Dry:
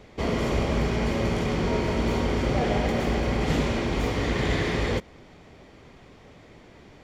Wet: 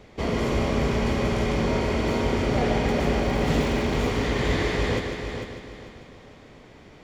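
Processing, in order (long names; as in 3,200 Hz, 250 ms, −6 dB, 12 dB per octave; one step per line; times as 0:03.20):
0:03.25–0:03.94: surface crackle 150 per second −33 dBFS
echo machine with several playback heads 149 ms, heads first and third, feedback 48%, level −8 dB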